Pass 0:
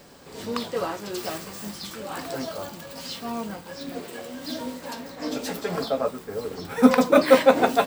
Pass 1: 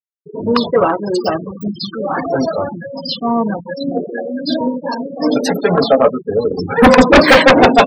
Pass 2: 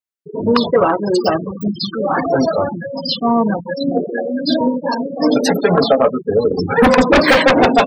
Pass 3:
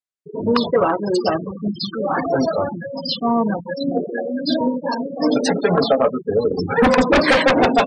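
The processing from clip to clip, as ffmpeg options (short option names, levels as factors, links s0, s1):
-af "afftfilt=real='re*gte(hypot(re,im),0.0355)':imag='im*gte(hypot(re,im),0.0355)':win_size=1024:overlap=0.75,aeval=exprs='0.841*sin(PI/2*3.98*val(0)/0.841)':c=same"
-af "acompressor=threshold=0.316:ratio=6,volume=1.26"
-af "aresample=22050,aresample=44100,volume=0.668"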